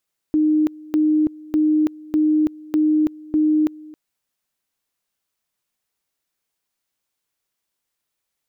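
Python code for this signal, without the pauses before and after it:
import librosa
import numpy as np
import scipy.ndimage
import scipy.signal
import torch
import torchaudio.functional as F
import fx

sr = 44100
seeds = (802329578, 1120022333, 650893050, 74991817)

y = fx.two_level_tone(sr, hz=307.0, level_db=-13.5, drop_db=22.5, high_s=0.33, low_s=0.27, rounds=6)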